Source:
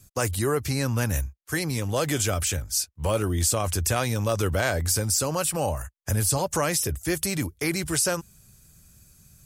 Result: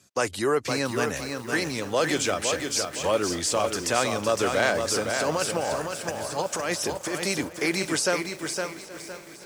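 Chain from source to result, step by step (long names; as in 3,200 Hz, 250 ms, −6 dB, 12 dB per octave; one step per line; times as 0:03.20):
0:05.09–0:07.32: compressor whose output falls as the input rises −27 dBFS, ratio −0.5
band-pass filter 270–6,000 Hz
echo machine with several playback heads 275 ms, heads second and third, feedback 71%, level −20.5 dB
feedback echo at a low word length 511 ms, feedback 35%, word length 8 bits, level −5 dB
level +2.5 dB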